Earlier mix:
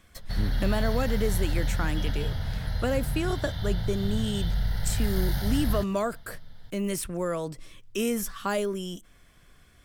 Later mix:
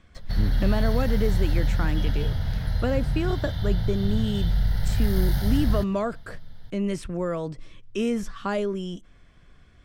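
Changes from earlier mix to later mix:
speech: add distance through air 96 m; master: add bass shelf 360 Hz +4.5 dB

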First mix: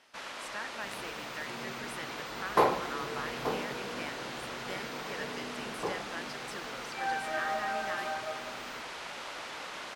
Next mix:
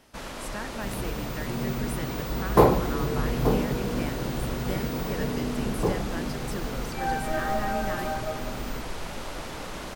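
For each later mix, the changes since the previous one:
master: remove band-pass filter 2.3 kHz, Q 0.53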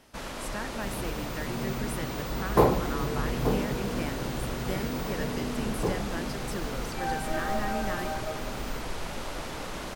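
second sound -3.5 dB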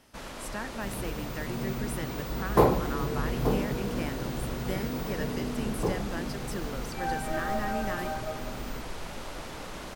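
first sound -3.5 dB

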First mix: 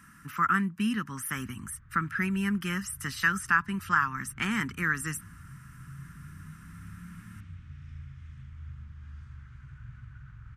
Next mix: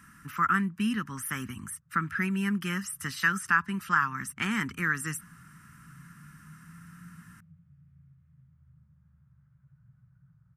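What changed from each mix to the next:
background: add two resonant band-passes 310 Hz, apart 1.8 oct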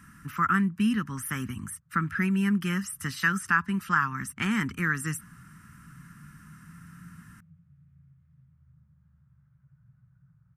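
speech: add bass shelf 300 Hz +6 dB

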